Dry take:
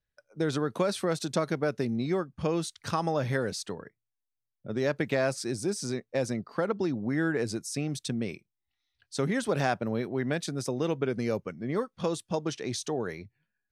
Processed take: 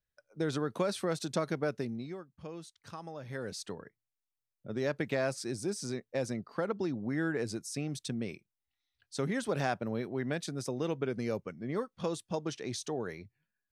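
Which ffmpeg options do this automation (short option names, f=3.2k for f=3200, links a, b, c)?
-af "volume=7dB,afade=t=out:st=1.69:d=0.48:silence=0.266073,afade=t=in:st=3.25:d=0.4:silence=0.281838"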